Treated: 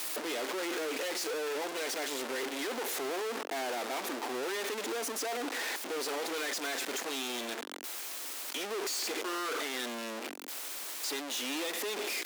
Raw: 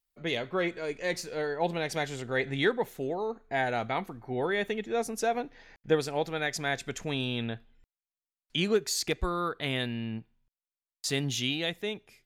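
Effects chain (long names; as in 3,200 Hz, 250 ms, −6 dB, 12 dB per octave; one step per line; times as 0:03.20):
sign of each sample alone
Butterworth high-pass 260 Hz 48 dB per octave
highs frequency-modulated by the lows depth 0.18 ms
level −2 dB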